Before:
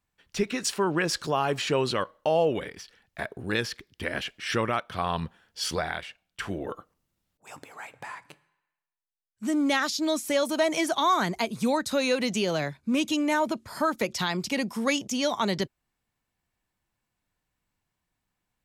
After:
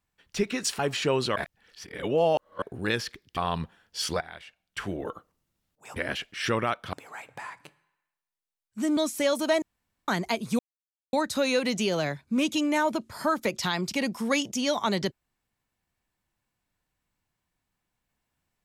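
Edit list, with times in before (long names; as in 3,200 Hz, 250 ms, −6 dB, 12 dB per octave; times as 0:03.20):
0:00.79–0:01.44: remove
0:02.01–0:03.27: reverse
0:04.02–0:04.99: move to 0:07.58
0:05.83–0:06.41: fade in, from −17.5 dB
0:09.62–0:10.07: remove
0:10.72–0:11.18: fill with room tone
0:11.69: splice in silence 0.54 s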